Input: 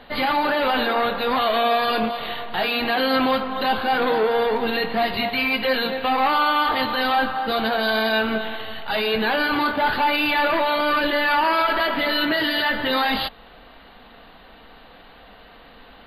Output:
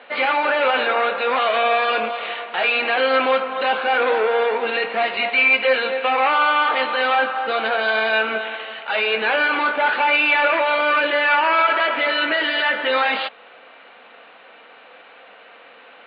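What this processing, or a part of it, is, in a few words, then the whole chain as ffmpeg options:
phone earpiece: -af "highpass=400,equalizer=f=520:t=q:w=4:g=6,equalizer=f=1.4k:t=q:w=4:g=5,equalizer=f=2.4k:t=q:w=4:g=9,lowpass=f=3.5k:w=0.5412,lowpass=f=3.5k:w=1.3066"

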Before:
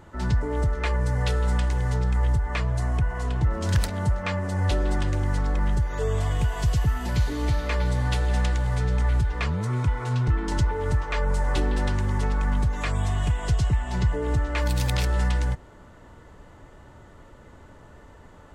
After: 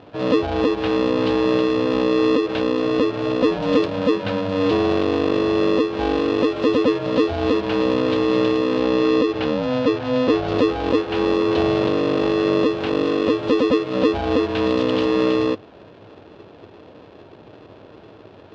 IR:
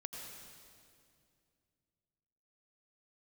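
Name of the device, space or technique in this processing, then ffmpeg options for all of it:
ring modulator pedal into a guitar cabinet: -filter_complex "[0:a]aeval=exprs='val(0)*sgn(sin(2*PI*380*n/s))':c=same,highpass=100,equalizer=f=100:t=q:w=4:g=8,equalizer=f=610:t=q:w=4:g=6,equalizer=f=1.2k:t=q:w=4:g=-6,equalizer=f=2k:t=q:w=4:g=-10,lowpass=f=3.9k:w=0.5412,lowpass=f=3.9k:w=1.3066,asettb=1/sr,asplit=3[a][b][c];[a]atrim=end=8.804[d];[b]atrim=start=8.8:end=10.54,asetpts=PTS-STARTPTS,afade=t=in:d=0.004:c=qsin,afade=t=out:st=1.736:d=0.004:c=qsin,lowpass=f=7.7k:w=0.5412,lowpass=f=7.7k:w=1.3066[e];[c]atrim=start=10.536[f];[d][e]acrossfade=d=0.004:c1=hsin:c2=qsin[g];[g][f]acrossfade=d=0.004:c1=qsin:c2=hsin,lowshelf=f=150:g=6,volume=3dB"

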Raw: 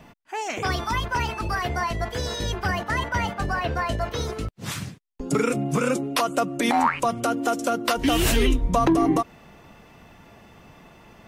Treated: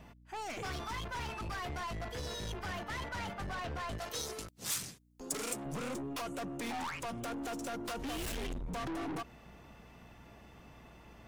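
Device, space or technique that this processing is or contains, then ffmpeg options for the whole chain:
valve amplifier with mains hum: -filter_complex "[0:a]aeval=exprs='(tanh(31.6*val(0)+0.2)-tanh(0.2))/31.6':c=same,aeval=exprs='val(0)+0.00251*(sin(2*PI*60*n/s)+sin(2*PI*2*60*n/s)/2+sin(2*PI*3*60*n/s)/3+sin(2*PI*4*60*n/s)/4+sin(2*PI*5*60*n/s)/5)':c=same,asettb=1/sr,asplit=3[a][b][c];[a]atrim=end=3.984[d];[b]atrim=start=3.98:end=5.66,asetpts=PTS-STARTPTS,afade=t=in:d=0.004:c=qsin,afade=t=out:st=1.676:d=0.004:c=qsin,bass=f=250:g=-9,treble=f=4k:g=13[e];[c]atrim=start=5.656[f];[d][e]acrossfade=d=0.004:c1=hsin:c2=qsin[g];[g][f]acrossfade=d=0.004:c1=qsin:c2=hsin,volume=-7dB"

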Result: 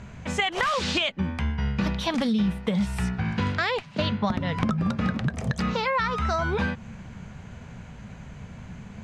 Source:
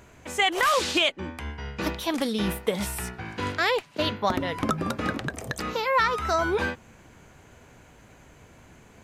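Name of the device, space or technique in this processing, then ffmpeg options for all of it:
jukebox: -af "lowpass=5.6k,lowshelf=f=250:t=q:w=3:g=6.5,acompressor=threshold=-27dB:ratio=6,volume=5dB"

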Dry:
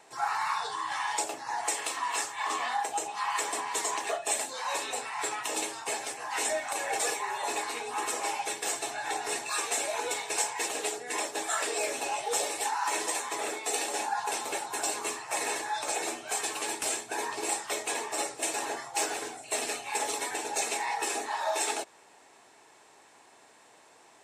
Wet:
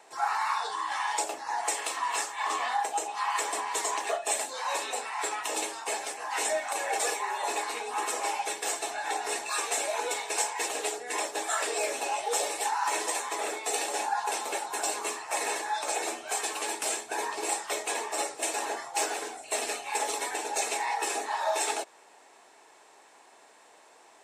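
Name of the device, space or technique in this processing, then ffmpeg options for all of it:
filter by subtraction: -filter_complex "[0:a]asplit=2[a][b];[b]lowpass=540,volume=-1[c];[a][c]amix=inputs=2:normalize=0"

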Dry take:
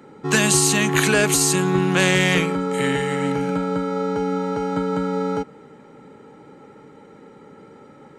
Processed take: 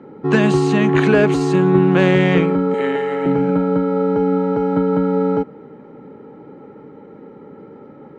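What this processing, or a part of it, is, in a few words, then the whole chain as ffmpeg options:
phone in a pocket: -filter_complex "[0:a]asettb=1/sr,asplit=3[a][b][c];[a]atrim=end=2.744[d];[b]atrim=start=2.74:end=3.26,asetpts=PTS-STARTPTS,afade=t=in:d=0.004:c=qsin,afade=t=out:st=0.516:d=0.004:c=qsin,highpass=380[e];[c]atrim=start=3.256[f];[d][e]acrossfade=d=0.004:c1=hsin:c2=qsin[g];[g][f]acrossfade=d=0.004:c1=qsin:c2=hsin,lowpass=3.6k,equalizer=f=320:t=o:w=2.4:g=5.5,highshelf=f=2.1k:g=-9.5,volume=2dB"

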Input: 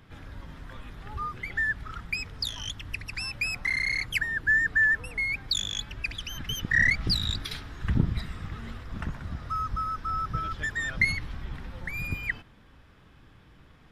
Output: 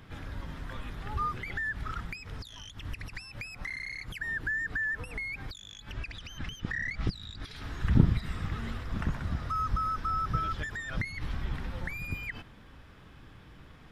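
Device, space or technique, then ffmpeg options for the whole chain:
de-esser from a sidechain: -filter_complex "[0:a]asplit=2[a][b];[b]highpass=5.9k,apad=whole_len=613850[c];[a][c]sidechaincompress=threshold=-56dB:ratio=5:attack=2.3:release=63,asettb=1/sr,asplit=3[d][e][f];[d]atrim=end=5.934[g];[e]atrim=start=5.93:end=7.56,asetpts=PTS-STARTPTS,afade=t=in:d=0.004:c=qsin,afade=t=out:st=1.626:d=0.004:c=qsin,lowpass=8.4k[h];[f]atrim=start=7.556[i];[g][h]acrossfade=d=0.004:c1=hsin:c2=qsin[j];[j][i]acrossfade=d=0.004:c1=qsin:c2=hsin,volume=3dB"

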